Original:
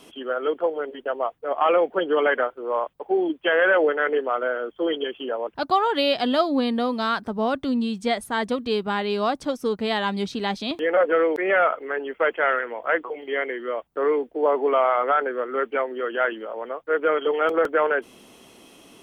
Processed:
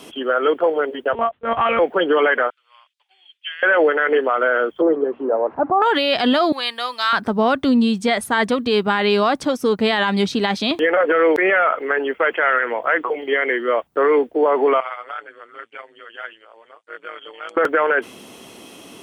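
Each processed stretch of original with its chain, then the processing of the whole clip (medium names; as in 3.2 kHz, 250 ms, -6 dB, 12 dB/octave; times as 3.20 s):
1.13–1.79 s: tilt shelf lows -4.5 dB, about 1.5 kHz + monotone LPC vocoder at 8 kHz 230 Hz
2.50–3.63 s: ladder high-pass 2.4 kHz, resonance 20% + distance through air 53 m
4.81–5.82 s: zero-crossing glitches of -17.5 dBFS + low-pass 1 kHz 24 dB/octave + hum notches 60/120/180/240/300 Hz
6.52–7.13 s: high-pass 1.3 kHz + treble shelf 5.2 kHz +3.5 dB
14.80–17.57 s: steep low-pass 9.3 kHz 48 dB/octave + differentiator + AM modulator 110 Hz, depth 60%
whole clip: high-pass 70 Hz; dynamic bell 1.8 kHz, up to +6 dB, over -34 dBFS, Q 0.78; loudness maximiser +16 dB; trim -7.5 dB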